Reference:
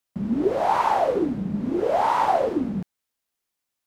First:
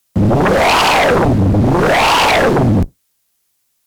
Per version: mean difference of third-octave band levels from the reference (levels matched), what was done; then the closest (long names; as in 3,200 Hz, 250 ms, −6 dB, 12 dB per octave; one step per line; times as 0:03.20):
8.0 dB: sub-octave generator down 1 octave, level +1 dB
high-shelf EQ 4,200 Hz +9 dB
sine wavefolder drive 14 dB, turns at −7.5 dBFS
expander for the loud parts 1.5 to 1, over −23 dBFS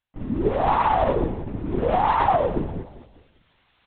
6.0 dB: high-pass filter 240 Hz
reversed playback
upward compression, threshold −37 dBFS
reversed playback
repeating echo 198 ms, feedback 39%, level −15 dB
linear-prediction vocoder at 8 kHz whisper
level +1 dB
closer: second